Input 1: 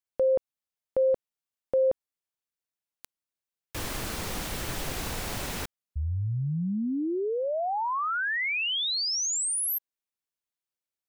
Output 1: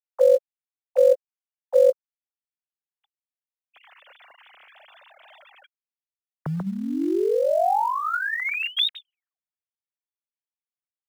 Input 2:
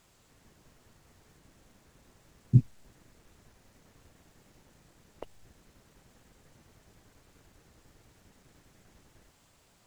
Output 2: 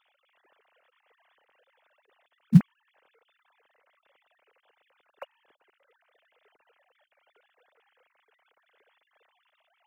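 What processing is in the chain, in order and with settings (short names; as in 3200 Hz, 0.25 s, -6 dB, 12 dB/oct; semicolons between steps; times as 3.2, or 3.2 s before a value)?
sine-wave speech; high shelf 2500 Hz +7 dB; in parallel at -9.5 dB: short-mantissa float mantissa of 2-bit; on the sum: gain +1.5 dB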